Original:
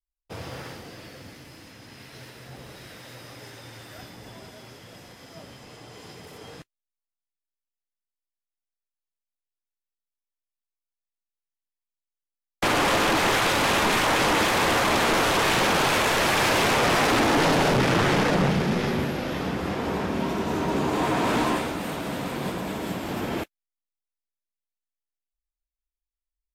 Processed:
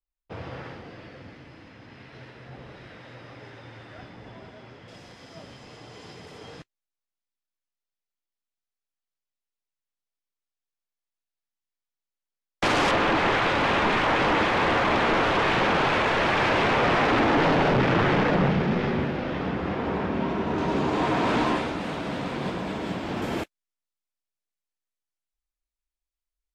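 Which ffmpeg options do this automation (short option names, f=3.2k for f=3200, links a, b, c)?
-af "asetnsamples=n=441:p=0,asendcmd='4.88 lowpass f 6100;12.91 lowpass f 2900;20.58 lowpass f 4800;23.22 lowpass f 10000',lowpass=2.7k"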